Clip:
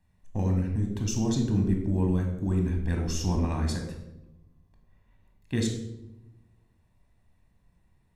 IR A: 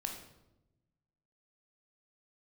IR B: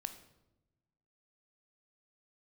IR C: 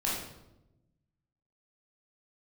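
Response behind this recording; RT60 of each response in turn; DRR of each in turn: A; 0.95 s, 1.0 s, 0.90 s; 2.5 dB, 8.5 dB, -6.0 dB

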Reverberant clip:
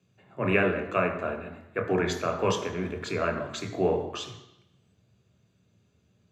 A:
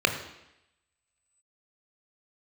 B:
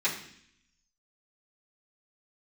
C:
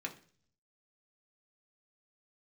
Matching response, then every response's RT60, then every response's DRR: A; 0.85 s, 0.65 s, 0.45 s; 5.0 dB, -11.0 dB, 0.5 dB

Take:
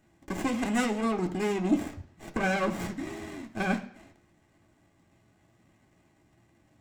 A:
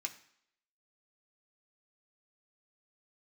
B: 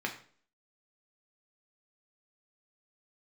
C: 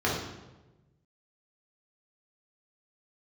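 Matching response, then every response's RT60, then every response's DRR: A; 0.65 s, 0.50 s, 1.1 s; 3.0 dB, 1.0 dB, -6.0 dB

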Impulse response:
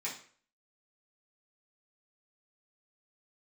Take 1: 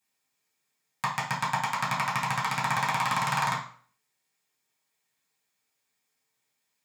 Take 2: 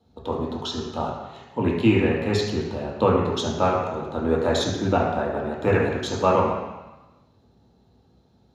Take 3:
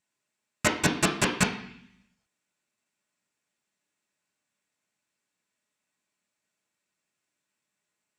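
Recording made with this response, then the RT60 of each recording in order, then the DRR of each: 1; 0.50 s, 1.0 s, 0.65 s; -8.0 dB, -3.5 dB, -1.5 dB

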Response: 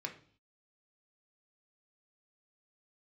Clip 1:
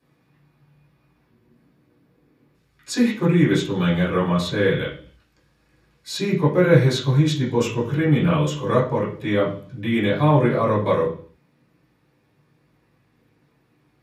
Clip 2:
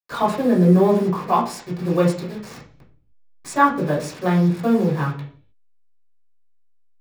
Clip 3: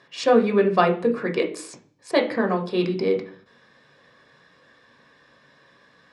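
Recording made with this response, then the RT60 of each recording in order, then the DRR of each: 3; 0.50 s, 0.50 s, 0.50 s; -10.0 dB, -5.5 dB, 2.5 dB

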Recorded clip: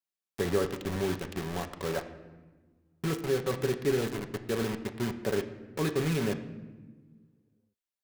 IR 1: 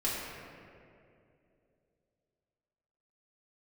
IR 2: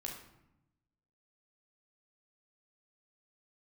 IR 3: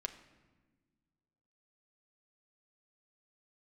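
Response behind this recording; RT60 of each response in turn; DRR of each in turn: 3; 2.6 s, 0.85 s, 1.4 s; -8.0 dB, -1.0 dB, 6.0 dB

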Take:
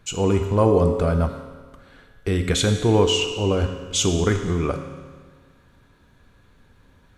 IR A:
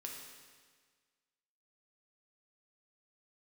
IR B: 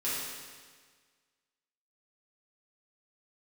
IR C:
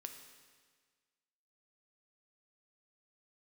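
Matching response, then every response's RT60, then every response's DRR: C; 1.6 s, 1.6 s, 1.6 s; -1.0 dB, -10.0 dB, 5.0 dB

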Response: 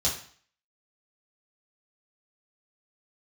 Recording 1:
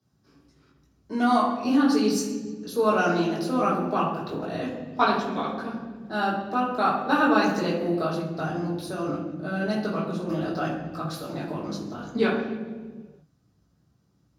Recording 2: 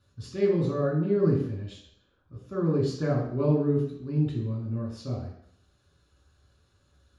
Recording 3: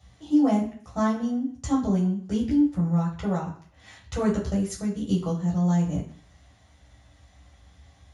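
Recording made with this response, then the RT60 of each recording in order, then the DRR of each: 3; 1.5 s, 0.70 s, 0.50 s; -9.0 dB, -3.5 dB, -5.5 dB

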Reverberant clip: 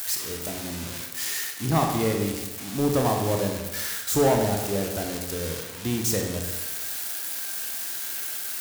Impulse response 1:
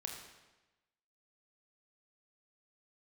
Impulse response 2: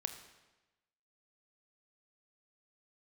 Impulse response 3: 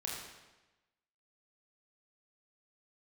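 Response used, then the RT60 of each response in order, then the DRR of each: 1; 1.1 s, 1.1 s, 1.1 s; 1.0 dB, 7.5 dB, -3.5 dB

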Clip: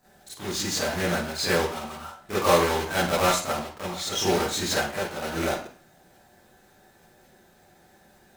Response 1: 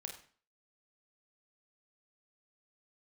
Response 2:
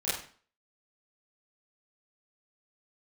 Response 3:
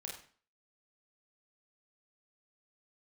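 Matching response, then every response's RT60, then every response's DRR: 2; 0.45 s, 0.45 s, 0.45 s; 2.0 dB, -11.5 dB, -2.0 dB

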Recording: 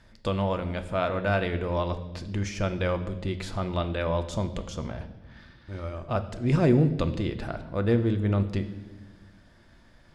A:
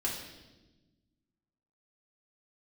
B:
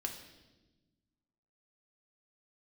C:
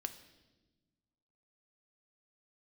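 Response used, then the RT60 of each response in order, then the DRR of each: C; 1.1 s, 1.1 s, 1.2 s; -4.5 dB, 2.0 dB, 8.0 dB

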